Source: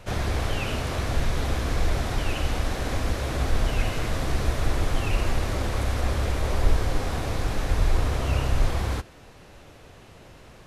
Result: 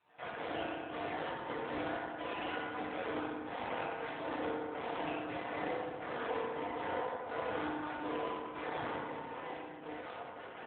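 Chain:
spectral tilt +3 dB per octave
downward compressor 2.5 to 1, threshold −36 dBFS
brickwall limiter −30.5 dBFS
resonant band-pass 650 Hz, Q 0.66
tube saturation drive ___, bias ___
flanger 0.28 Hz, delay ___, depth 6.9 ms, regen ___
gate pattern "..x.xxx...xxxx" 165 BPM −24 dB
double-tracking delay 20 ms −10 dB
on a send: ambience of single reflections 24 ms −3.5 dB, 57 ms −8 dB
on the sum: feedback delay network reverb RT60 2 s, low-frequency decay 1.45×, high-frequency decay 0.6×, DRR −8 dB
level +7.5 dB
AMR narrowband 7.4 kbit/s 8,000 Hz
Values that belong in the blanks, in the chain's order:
47 dB, 0.4, 0.8 ms, −41%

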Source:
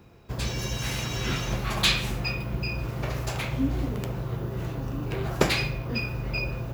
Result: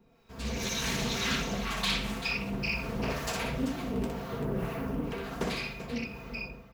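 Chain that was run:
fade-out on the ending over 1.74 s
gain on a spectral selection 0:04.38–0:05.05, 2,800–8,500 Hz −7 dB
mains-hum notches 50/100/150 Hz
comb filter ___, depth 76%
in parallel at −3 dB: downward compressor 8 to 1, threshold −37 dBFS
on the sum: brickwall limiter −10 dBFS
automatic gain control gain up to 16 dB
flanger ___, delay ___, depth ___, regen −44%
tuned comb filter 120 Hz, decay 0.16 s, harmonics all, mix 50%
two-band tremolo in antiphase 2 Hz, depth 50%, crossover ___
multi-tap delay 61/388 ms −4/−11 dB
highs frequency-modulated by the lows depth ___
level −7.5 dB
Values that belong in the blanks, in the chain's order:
4.4 ms, 1.1 Hz, 5.1 ms, 8.2 ms, 840 Hz, 0.3 ms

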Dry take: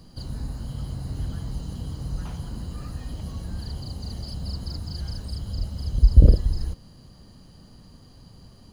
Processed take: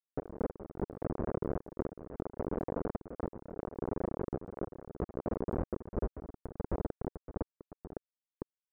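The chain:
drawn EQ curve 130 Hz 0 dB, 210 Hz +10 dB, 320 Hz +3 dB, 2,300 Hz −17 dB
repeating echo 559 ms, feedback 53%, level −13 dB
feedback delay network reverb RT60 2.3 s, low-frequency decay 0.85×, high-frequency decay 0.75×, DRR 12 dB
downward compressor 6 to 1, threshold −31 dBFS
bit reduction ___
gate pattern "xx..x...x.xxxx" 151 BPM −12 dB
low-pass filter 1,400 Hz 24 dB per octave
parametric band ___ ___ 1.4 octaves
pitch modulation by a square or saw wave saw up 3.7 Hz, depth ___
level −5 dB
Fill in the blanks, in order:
5 bits, 440 Hz, +9.5 dB, 160 cents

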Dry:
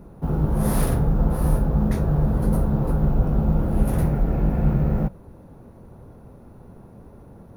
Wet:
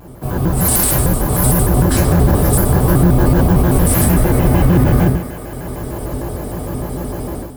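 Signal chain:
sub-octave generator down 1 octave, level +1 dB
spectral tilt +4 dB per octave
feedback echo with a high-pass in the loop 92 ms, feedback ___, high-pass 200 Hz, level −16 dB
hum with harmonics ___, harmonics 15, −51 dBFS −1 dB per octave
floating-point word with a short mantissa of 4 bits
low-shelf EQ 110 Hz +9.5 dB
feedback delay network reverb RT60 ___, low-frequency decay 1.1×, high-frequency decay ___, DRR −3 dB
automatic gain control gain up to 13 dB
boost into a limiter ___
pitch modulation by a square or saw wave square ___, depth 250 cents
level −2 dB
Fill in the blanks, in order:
83%, 50 Hz, 0.5 s, 0.95×, +6 dB, 6.6 Hz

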